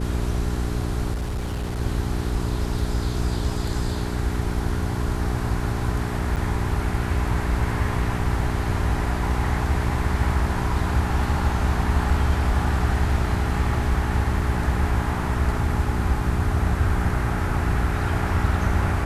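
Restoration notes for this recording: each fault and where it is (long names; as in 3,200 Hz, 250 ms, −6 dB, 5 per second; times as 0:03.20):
mains hum 60 Hz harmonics 7 −27 dBFS
0:01.13–0:01.80: clipping −23.5 dBFS
0:06.36–0:06.37: drop-out 8.1 ms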